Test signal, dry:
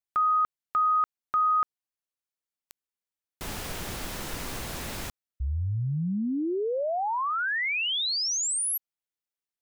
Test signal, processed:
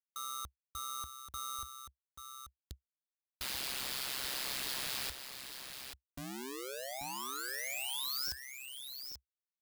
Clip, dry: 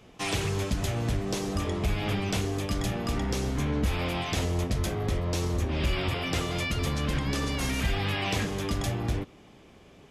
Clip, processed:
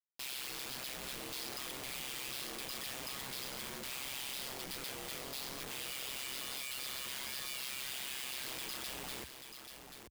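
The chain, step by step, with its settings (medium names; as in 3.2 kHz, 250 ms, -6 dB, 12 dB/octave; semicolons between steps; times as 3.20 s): differentiator; resampled via 11.025 kHz; Schmitt trigger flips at -55.5 dBFS; treble shelf 4.1 kHz +10 dB; ring modulator 66 Hz; on a send: delay 835 ms -8 dB; on the sum: trim +2.5 dB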